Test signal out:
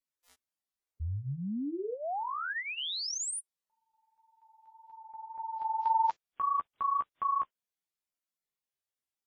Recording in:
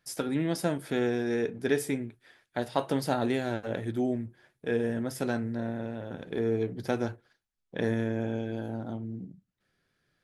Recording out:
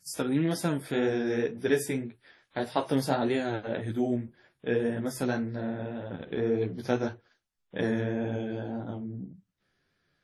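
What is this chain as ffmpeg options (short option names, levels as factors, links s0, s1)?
-af "flanger=delay=9.8:depth=6.7:regen=-10:speed=1.8:shape=triangular,volume=1.58" -ar 44100 -c:a wmav2 -b:a 32k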